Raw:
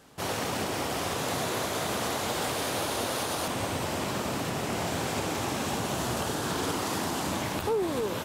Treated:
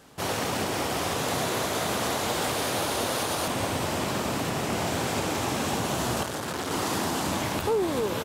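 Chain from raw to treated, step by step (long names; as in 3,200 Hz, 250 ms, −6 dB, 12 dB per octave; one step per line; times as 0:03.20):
on a send: single-tap delay 468 ms −14.5 dB
0:06.23–0:06.71: on the sum: saturating transformer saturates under 1,300 Hz
level +2.5 dB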